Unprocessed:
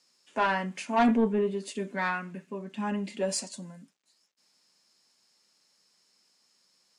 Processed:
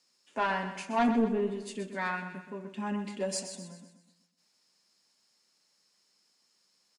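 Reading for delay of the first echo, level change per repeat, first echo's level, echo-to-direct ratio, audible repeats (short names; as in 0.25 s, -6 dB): 0.126 s, -6.5 dB, -10.0 dB, -9.0 dB, 4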